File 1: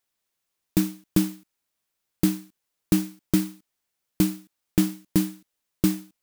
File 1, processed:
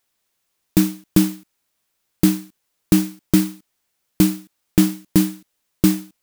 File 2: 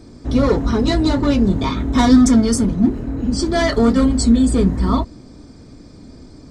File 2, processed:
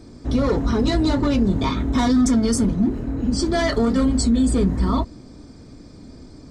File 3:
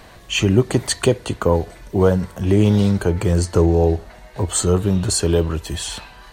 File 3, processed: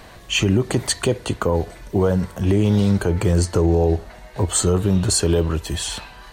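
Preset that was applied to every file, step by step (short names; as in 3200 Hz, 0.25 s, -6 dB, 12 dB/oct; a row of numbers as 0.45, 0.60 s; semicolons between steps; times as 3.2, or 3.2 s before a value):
limiter -9 dBFS; match loudness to -20 LUFS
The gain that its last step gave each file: +7.5, -1.5, +1.0 dB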